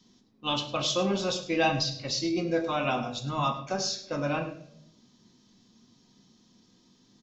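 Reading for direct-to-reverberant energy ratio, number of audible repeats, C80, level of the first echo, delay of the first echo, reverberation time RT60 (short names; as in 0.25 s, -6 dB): 3.5 dB, 1, 11.5 dB, -14.5 dB, 0.103 s, 0.70 s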